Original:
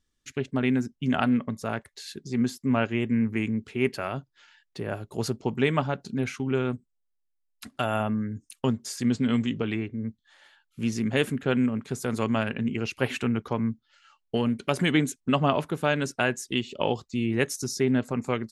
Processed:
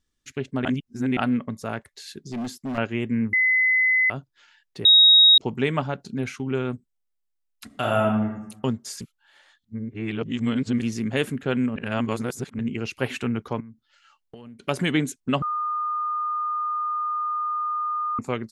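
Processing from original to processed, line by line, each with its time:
0:00.65–0:01.17: reverse
0:02.24–0:02.78: hard clipping −27 dBFS
0:03.33–0:04.10: beep over 2,030 Hz −16.5 dBFS
0:04.85–0:05.38: beep over 3,780 Hz −10 dBFS
0:07.66–0:08.25: thrown reverb, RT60 0.85 s, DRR −1 dB
0:09.01–0:10.82: reverse
0:11.76–0:12.59: reverse
0:13.60–0:14.68: downward compressor 10 to 1, threshold −39 dBFS
0:15.42–0:18.19: beep over 1,220 Hz −23.5 dBFS

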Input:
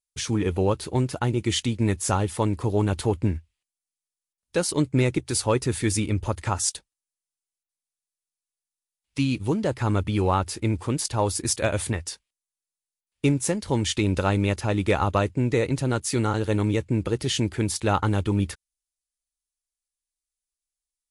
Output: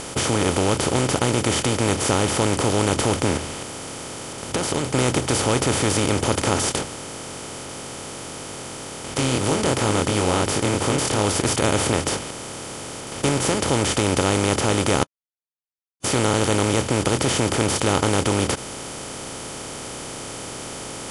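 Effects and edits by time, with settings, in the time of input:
0:03.37–0:04.93: downward compressor, threshold −38 dBFS
0:06.75–0:11.25: chorus effect 2.9 Hz, delay 19 ms, depth 5.5 ms
0:15.03–0:16.04: silence
whole clip: compressor on every frequency bin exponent 0.2; level −5 dB

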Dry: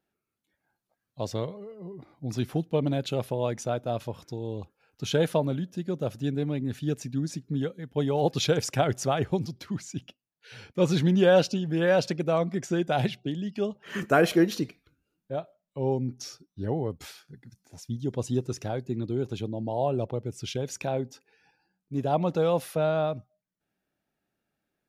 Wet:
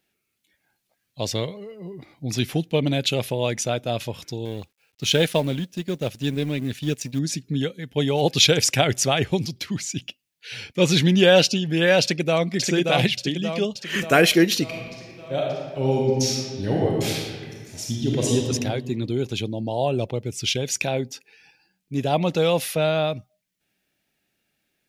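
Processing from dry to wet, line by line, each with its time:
0:04.45–0:07.19: mu-law and A-law mismatch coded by A
0:12.01–0:12.49: delay throw 580 ms, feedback 55%, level −3.5 dB
0:14.63–0:18.36: thrown reverb, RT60 1.7 s, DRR −3 dB
whole clip: high shelf with overshoot 1,700 Hz +8 dB, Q 1.5; level +4.5 dB

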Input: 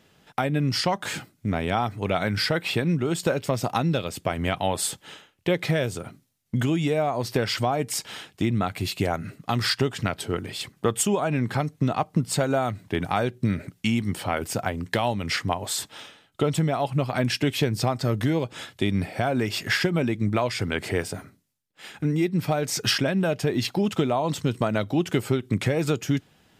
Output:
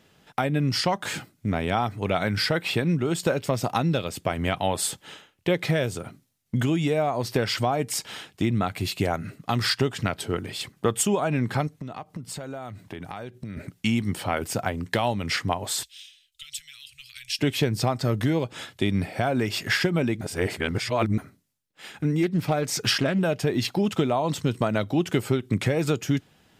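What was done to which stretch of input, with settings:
0:11.67–0:13.57: downward compressor 4 to 1, threshold −34 dBFS
0:15.83–0:17.39: inverse Chebyshev band-stop filter 190–780 Hz, stop band 70 dB
0:20.21–0:21.18: reverse
0:22.23–0:23.19: highs frequency-modulated by the lows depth 0.27 ms

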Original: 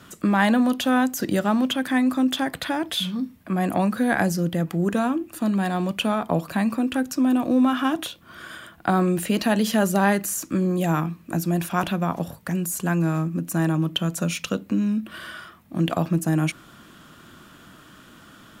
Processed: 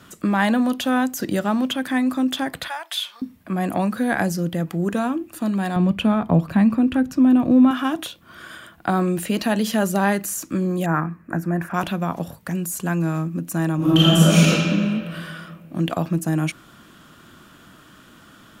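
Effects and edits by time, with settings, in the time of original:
0:02.68–0:03.22: high-pass filter 750 Hz 24 dB per octave
0:05.76–0:07.71: bass and treble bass +11 dB, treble −9 dB
0:10.86–0:11.74: high shelf with overshoot 2,400 Hz −11.5 dB, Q 3
0:13.76–0:14.48: thrown reverb, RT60 2.3 s, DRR −11 dB

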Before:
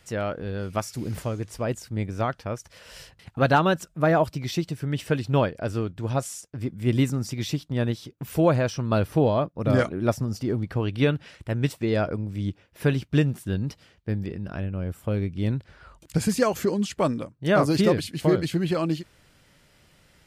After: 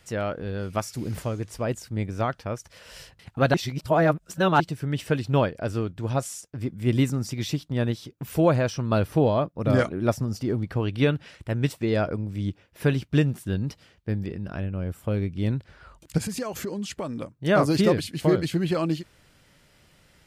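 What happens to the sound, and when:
0:03.54–0:04.60: reverse
0:16.18–0:17.22: downward compressor 4 to 1, threshold −28 dBFS

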